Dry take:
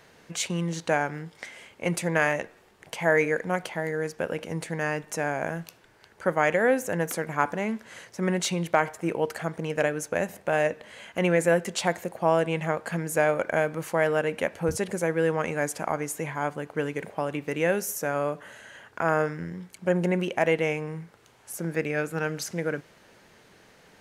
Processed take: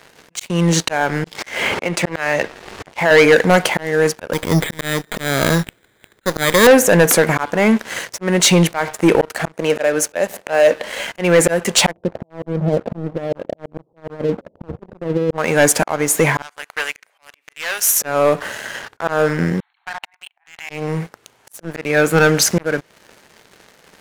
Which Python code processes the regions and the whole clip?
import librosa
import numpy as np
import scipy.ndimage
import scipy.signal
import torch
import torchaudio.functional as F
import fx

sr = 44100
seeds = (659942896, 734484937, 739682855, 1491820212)

y = fx.chain(x, sr, fx.lowpass(hz=6400.0, slope=12),
    fx.dynamic_eq(hz=180.0, q=0.77, threshold_db=-36.0, ratio=4.0, max_db=-3),
    fx.band_squash(depth_pct=100), at=(1.24, 3.11))
y = fx.chain(y, sr, fx.lower_of_two(delay_ms=0.51),
    fx.resample_bad(factor=8, down='filtered', up='hold'), at=(4.33, 6.67))
y = fx.chain(y, sr, fx.highpass(hz=230.0, slope=12),
    fx.peak_eq(hz=570.0, db=5.0, octaves=0.28), at=(9.55, 11.04))
y = fx.chain(y, sr, fx.over_compress(threshold_db=-26.0, ratio=-0.5),
    fx.gaussian_blur(sigma=16.0),
    fx.hum_notches(base_hz=60, count=2), at=(11.91, 15.38))
y = fx.chain(y, sr, fx.tube_stage(drive_db=23.0, bias=0.45),
    fx.highpass(hz=1400.0, slope=12), at=(16.42, 18.0))
y = fx.chain(y, sr, fx.brickwall_bandpass(low_hz=690.0, high_hz=4400.0),
    fx.level_steps(step_db=23), at=(19.6, 20.7))
y = fx.low_shelf(y, sr, hz=170.0, db=-6.0)
y = fx.auto_swell(y, sr, attack_ms=370.0)
y = fx.leveller(y, sr, passes=3)
y = y * 10.0 ** (9.0 / 20.0)